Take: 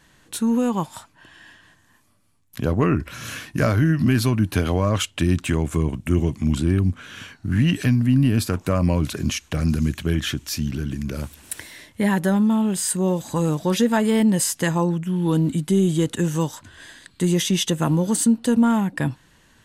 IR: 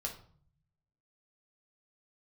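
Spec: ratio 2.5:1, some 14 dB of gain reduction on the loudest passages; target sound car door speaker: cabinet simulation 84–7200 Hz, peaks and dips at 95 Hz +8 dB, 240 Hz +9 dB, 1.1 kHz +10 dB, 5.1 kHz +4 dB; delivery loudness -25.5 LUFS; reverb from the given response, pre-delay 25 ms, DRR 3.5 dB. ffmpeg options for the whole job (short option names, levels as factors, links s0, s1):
-filter_complex "[0:a]acompressor=threshold=0.0158:ratio=2.5,asplit=2[s0][s1];[1:a]atrim=start_sample=2205,adelay=25[s2];[s1][s2]afir=irnorm=-1:irlink=0,volume=0.631[s3];[s0][s3]amix=inputs=2:normalize=0,highpass=84,equalizer=f=95:t=q:w=4:g=8,equalizer=f=240:t=q:w=4:g=9,equalizer=f=1100:t=q:w=4:g=10,equalizer=f=5100:t=q:w=4:g=4,lowpass=f=7200:w=0.5412,lowpass=f=7200:w=1.3066,volume=1.33"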